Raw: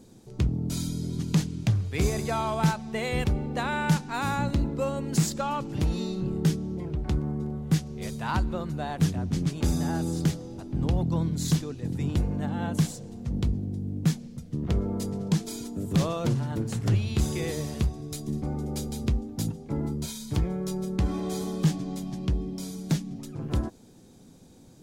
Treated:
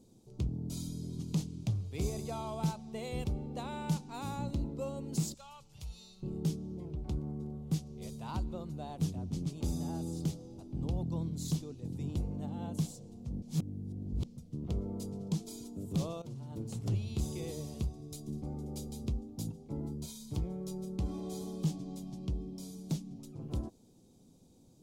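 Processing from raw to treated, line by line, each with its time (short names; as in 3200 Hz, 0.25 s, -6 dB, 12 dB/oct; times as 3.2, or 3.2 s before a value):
5.34–6.23 passive tone stack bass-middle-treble 10-0-10
13.42–14.24 reverse
16.22–16.7 fade in, from -15.5 dB
whole clip: bell 1700 Hz -15 dB 0.84 oct; gain -9 dB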